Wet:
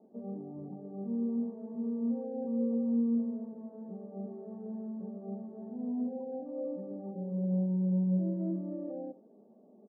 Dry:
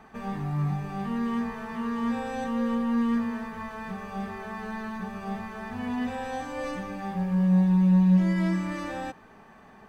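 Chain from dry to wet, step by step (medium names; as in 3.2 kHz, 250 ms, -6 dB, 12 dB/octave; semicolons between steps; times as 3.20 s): elliptic band-pass 210–600 Hz, stop band 80 dB; on a send: delay 92 ms -18.5 dB; on the sum: trim -2.5 dB; Vorbis 16 kbps 22.05 kHz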